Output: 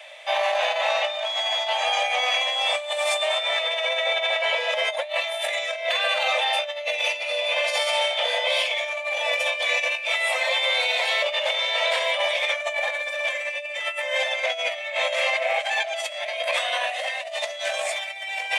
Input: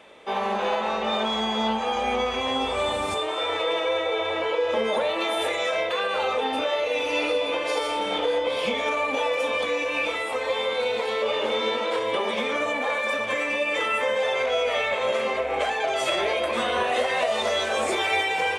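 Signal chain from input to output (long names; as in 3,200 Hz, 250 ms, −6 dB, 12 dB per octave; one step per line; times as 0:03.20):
Chebyshev high-pass filter 590 Hz, order 6
flat-topped bell 1,100 Hz −10 dB 1.1 octaves
compressor whose output falls as the input rises −32 dBFS, ratio −0.5
level +7.5 dB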